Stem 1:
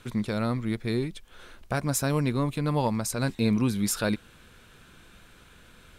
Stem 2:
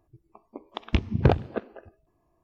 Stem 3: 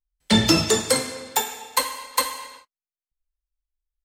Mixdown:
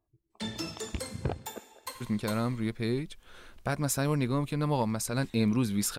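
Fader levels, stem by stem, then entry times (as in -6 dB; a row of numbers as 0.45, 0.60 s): -2.5, -13.0, -19.0 dB; 1.95, 0.00, 0.10 s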